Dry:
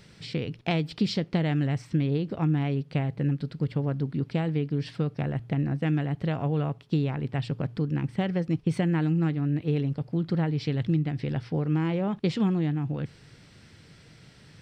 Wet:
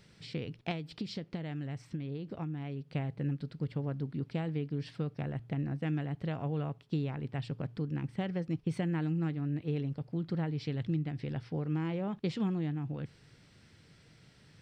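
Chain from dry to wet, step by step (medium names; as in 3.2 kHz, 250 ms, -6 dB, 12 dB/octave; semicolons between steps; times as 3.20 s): 0.71–2.95 s: compression, threshold -27 dBFS, peak gain reduction 7.5 dB; trim -7.5 dB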